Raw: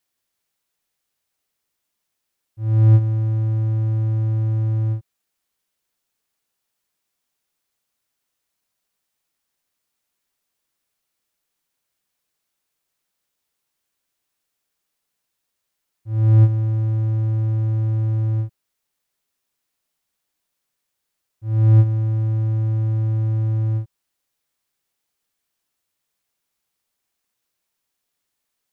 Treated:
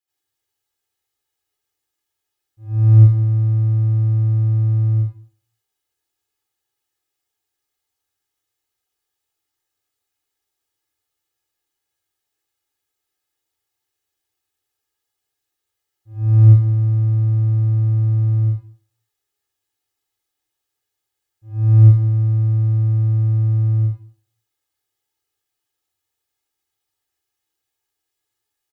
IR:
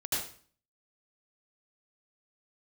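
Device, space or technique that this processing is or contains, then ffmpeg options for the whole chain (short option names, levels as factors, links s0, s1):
microphone above a desk: -filter_complex "[0:a]aecho=1:1:2.4:0.75[s0];[1:a]atrim=start_sample=2205[s1];[s0][s1]afir=irnorm=-1:irlink=0,volume=0.335"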